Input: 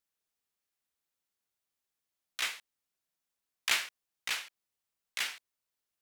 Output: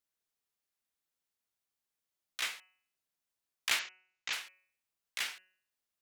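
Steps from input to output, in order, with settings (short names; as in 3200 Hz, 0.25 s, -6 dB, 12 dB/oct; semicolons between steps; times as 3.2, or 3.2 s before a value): 3.79–4.33 elliptic low-pass 7000 Hz, stop band 40 dB; de-hum 185.5 Hz, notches 16; gain -2 dB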